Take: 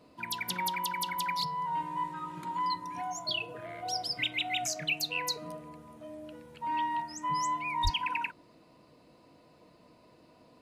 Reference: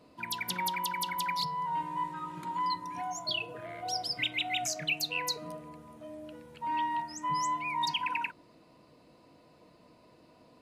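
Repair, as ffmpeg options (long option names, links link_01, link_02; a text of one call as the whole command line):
ffmpeg -i in.wav -filter_complex "[0:a]asplit=3[link_01][link_02][link_03];[link_01]afade=type=out:start_time=7.83:duration=0.02[link_04];[link_02]highpass=frequency=140:width=0.5412,highpass=frequency=140:width=1.3066,afade=type=in:start_time=7.83:duration=0.02,afade=type=out:start_time=7.95:duration=0.02[link_05];[link_03]afade=type=in:start_time=7.95:duration=0.02[link_06];[link_04][link_05][link_06]amix=inputs=3:normalize=0" out.wav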